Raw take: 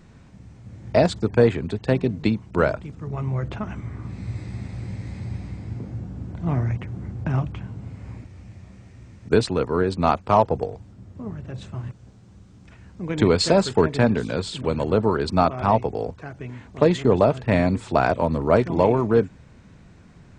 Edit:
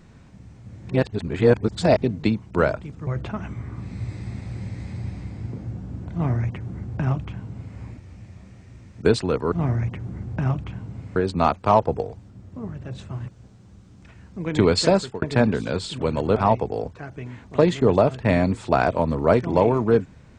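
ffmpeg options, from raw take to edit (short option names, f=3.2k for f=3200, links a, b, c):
-filter_complex "[0:a]asplit=8[a][b][c][d][e][f][g][h];[a]atrim=end=0.892[i];[b]atrim=start=0.888:end=2.022,asetpts=PTS-STARTPTS,areverse[j];[c]atrim=start=2.018:end=3.072[k];[d]atrim=start=3.338:end=9.792[l];[e]atrim=start=6.398:end=8.042[m];[f]atrim=start=9.788:end=13.85,asetpts=PTS-STARTPTS,afade=t=out:st=3.762:d=0.3[n];[g]atrim=start=13.85:end=14.992,asetpts=PTS-STARTPTS,afade=t=in:d=0.004:c=hsin[o];[h]atrim=start=15.588[p];[i][j]acrossfade=d=0.004:c1=hsin:c2=hsin[q];[q][k]acrossfade=d=0.004:c1=hsin:c2=hsin[r];[r][l]acrossfade=d=0.004:c1=hsin:c2=hsin[s];[s][m]acrossfade=d=0.004:c1=hsin:c2=hsin[t];[n][o]concat=n=2:v=0:a=1[u];[t][u]acrossfade=d=0.004:c1=hsin:c2=hsin[v];[v][p]acrossfade=d=0.004:c1=hsin:c2=hsin"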